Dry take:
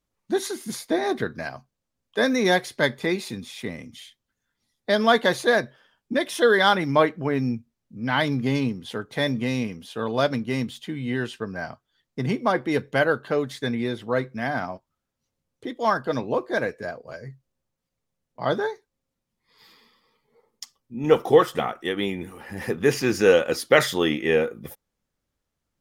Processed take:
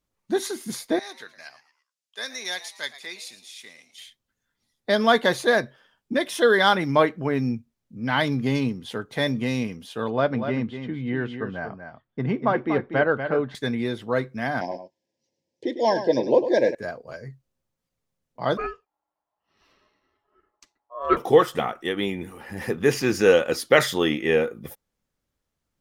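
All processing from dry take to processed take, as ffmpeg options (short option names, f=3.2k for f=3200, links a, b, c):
-filter_complex "[0:a]asettb=1/sr,asplit=3[a][b][c];[a]atrim=end=0.994[d];[b]atrim=start=0.99:end=3.98,asetpts=PTS-STARTPTS,afade=t=in:d=0.004:c=qsin,afade=t=out:st=2.986:d=0.004:c=qsin,bandpass=f=6.6k:t=q:w=0.66,asplit=4[e][f][g][h];[f]adelay=112,afreqshift=130,volume=-15dB[i];[g]adelay=224,afreqshift=260,volume=-23.4dB[j];[h]adelay=336,afreqshift=390,volume=-31.8dB[k];[e][i][j][k]amix=inputs=4:normalize=0,atrim=end_sample=131859[l];[c]atrim=start=3.976[m];[d][l]acrossfade=d=0.004:c1=hsin:c2=qsin[n];[n][m]acrossfade=d=0.004:c1=qsin:c2=hsin,asettb=1/sr,asplit=3[o][p][q];[o]atrim=end=10.104[r];[p]atrim=start=10.1:end=13.55,asetpts=PTS-STARTPTS,afade=t=in:d=0.004:c=qsin,afade=t=out:st=3.446:d=0.004:c=qsin,lowpass=2.2k,aecho=1:1:240:0.376,atrim=end_sample=152145[s];[q]atrim=start=13.546[t];[r][s]acrossfade=d=0.004:c1=hsin:c2=qsin[u];[u][t]acrossfade=d=0.004:c1=qsin:c2=hsin,asettb=1/sr,asplit=3[v][w][x];[v]atrim=end=14.614[y];[w]atrim=start=14.61:end=16.75,asetpts=PTS-STARTPTS,afade=t=in:d=0.004:c=qsin,afade=t=out:st=2.136:d=0.004:c=qsin,asuperstop=centerf=1300:order=12:qfactor=2.2,highpass=160,equalizer=f=340:t=q:w=4:g=9,equalizer=f=540:t=q:w=4:g=9,equalizer=f=5.2k:t=q:w=4:g=8,lowpass=f=7.7k:w=0.5412,lowpass=f=7.7k:w=1.3066,aecho=1:1:102:0.299,atrim=end_sample=94374[z];[x]atrim=start=16.746[aa];[y][z]acrossfade=d=0.004:c1=hsin:c2=qsin[ab];[ab][aa]acrossfade=d=0.004:c1=qsin:c2=hsin,asettb=1/sr,asplit=3[ac][ad][ae];[ac]atrim=end=18.574[af];[ad]atrim=start=18.57:end=21.17,asetpts=PTS-STARTPTS,afade=t=in:d=0.004:c=qsin,afade=t=out:st=2.596:d=0.004:c=qsin,lowpass=f=1.3k:p=1,aeval=exprs='val(0)*sin(2*PI*840*n/s)':c=same[ag];[ae]atrim=start=21.166[ah];[af][ag]acrossfade=d=0.004:c1=hsin:c2=qsin[ai];[ai][ah]acrossfade=d=0.004:c1=qsin:c2=hsin"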